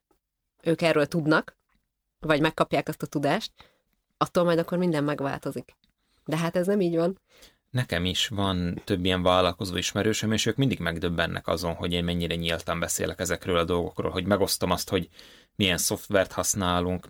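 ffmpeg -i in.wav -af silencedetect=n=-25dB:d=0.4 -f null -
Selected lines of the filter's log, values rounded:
silence_start: 0.00
silence_end: 0.67 | silence_duration: 0.67
silence_start: 1.48
silence_end: 2.25 | silence_duration: 0.77
silence_start: 3.46
silence_end: 4.21 | silence_duration: 0.75
silence_start: 5.60
silence_end: 6.29 | silence_duration: 0.69
silence_start: 7.11
silence_end: 7.75 | silence_duration: 0.64
silence_start: 15.02
silence_end: 15.59 | silence_duration: 0.58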